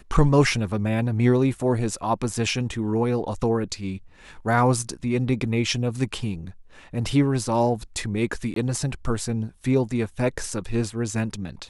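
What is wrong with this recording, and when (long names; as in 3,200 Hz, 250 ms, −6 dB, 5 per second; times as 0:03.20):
0:08.54–0:08.56: drop-out 23 ms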